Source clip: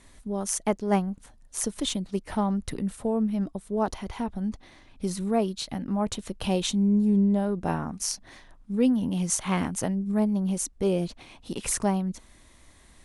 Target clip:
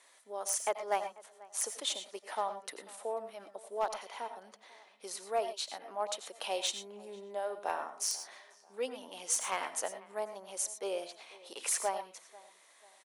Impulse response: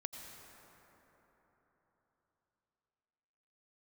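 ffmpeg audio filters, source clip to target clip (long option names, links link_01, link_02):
-filter_complex "[0:a]highpass=frequency=510:width=0.5412,highpass=frequency=510:width=1.3066,asplit=2[link_01][link_02];[link_02]adelay=491,lowpass=frequency=2300:poles=1,volume=-21.5dB,asplit=2[link_03][link_04];[link_04]adelay=491,lowpass=frequency=2300:poles=1,volume=0.43,asplit=2[link_05][link_06];[link_06]adelay=491,lowpass=frequency=2300:poles=1,volume=0.43[link_07];[link_01][link_03][link_05][link_07]amix=inputs=4:normalize=0,asplit=2[link_08][link_09];[link_09]acrusher=bits=2:mix=0:aa=0.5,volume=-8dB[link_10];[link_08][link_10]amix=inputs=2:normalize=0[link_11];[1:a]atrim=start_sample=2205,afade=type=out:start_time=0.17:duration=0.01,atrim=end_sample=7938[link_12];[link_11][link_12]afir=irnorm=-1:irlink=0,volume=22.5dB,asoftclip=hard,volume=-22.5dB"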